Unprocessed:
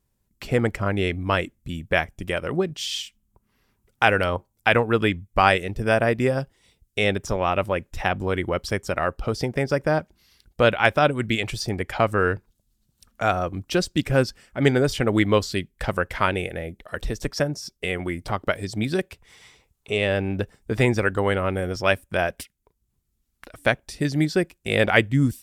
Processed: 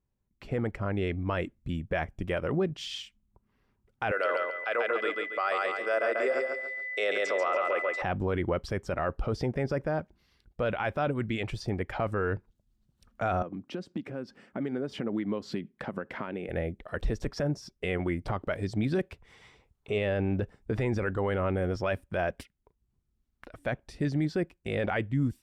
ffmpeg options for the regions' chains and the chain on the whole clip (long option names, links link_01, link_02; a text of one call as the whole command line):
ffmpeg -i in.wav -filter_complex "[0:a]asettb=1/sr,asplit=3[link_01][link_02][link_03];[link_01]atrim=end=4.114[link_04];[link_02]atrim=start=4.11:end=8.02,asetpts=PTS-STARTPTS,afade=type=in:duration=0.004:curve=qsin,afade=type=out:start_time=3.906:duration=0.004:curve=qsin,aeval=exprs='val(0)+0.0224*sin(2*PI*2000*n/s)':channel_layout=same,highpass=frequency=400:width=0.5412,highpass=frequency=400:width=1.3066,equalizer=frequency=590:width_type=q:width=4:gain=4,equalizer=frequency=860:width_type=q:width=4:gain=-8,equalizer=frequency=1300:width_type=q:width=4:gain=8,equalizer=frequency=4400:width_type=q:width=4:gain=10,equalizer=frequency=8000:width_type=q:width=4:gain=10,lowpass=frequency=8800:width=0.5412,lowpass=frequency=8800:width=1.3066,aecho=1:1:139|278|417|556:0.562|0.186|0.0612|0.0202,atrim=end_sample=172431[link_05];[link_03]atrim=start=8.016[link_06];[link_04][link_05]acrossfade=duration=0.004:curve1=hsin:curve2=qsin[link_07];[link_07][link_06]acrossfade=duration=0.004:curve1=qsin:curve2=hsin,asettb=1/sr,asplit=3[link_08][link_09][link_10];[link_08]atrim=end=13.424[link_11];[link_09]atrim=start=13.42:end=16.49,asetpts=PTS-STARTPTS,afade=type=in:duration=0.004:curve=qsin,afade=type=out:start_time=3.066:duration=0.004:curve=qsin,highshelf=frequency=5200:gain=-8,acompressor=threshold=-33dB:ratio=10:attack=3.2:release=140:knee=1:detection=peak,highpass=frequency=210:width_type=q:width=1.8[link_12];[link_10]atrim=start=16.486[link_13];[link_11][link_12]acrossfade=duration=0.004:curve1=hsin:curve2=qsin[link_14];[link_14][link_13]acrossfade=duration=0.004:curve1=qsin:curve2=hsin,lowpass=frequency=1600:poles=1,dynaudnorm=framelen=460:gausssize=5:maxgain=11.5dB,alimiter=limit=-12dB:level=0:latency=1:release=11,volume=-7.5dB" out.wav